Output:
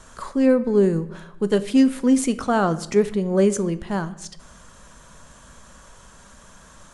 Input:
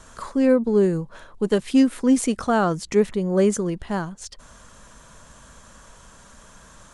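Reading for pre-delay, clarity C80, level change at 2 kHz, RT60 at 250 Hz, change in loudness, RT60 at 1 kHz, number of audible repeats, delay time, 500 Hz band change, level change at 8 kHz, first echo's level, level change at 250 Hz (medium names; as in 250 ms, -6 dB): 5 ms, 18.0 dB, +0.5 dB, 1.2 s, +0.5 dB, 0.80 s, no echo, no echo, +0.5 dB, 0.0 dB, no echo, +0.5 dB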